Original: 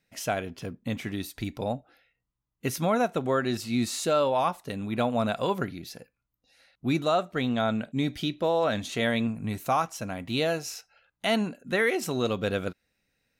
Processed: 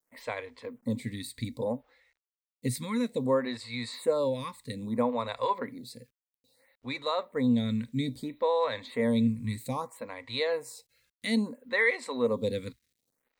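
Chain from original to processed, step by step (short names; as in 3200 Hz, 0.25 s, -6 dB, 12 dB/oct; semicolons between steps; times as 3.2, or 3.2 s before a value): ripple EQ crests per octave 0.98, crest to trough 15 dB; bit-crush 11-bit; photocell phaser 0.61 Hz; gain -3 dB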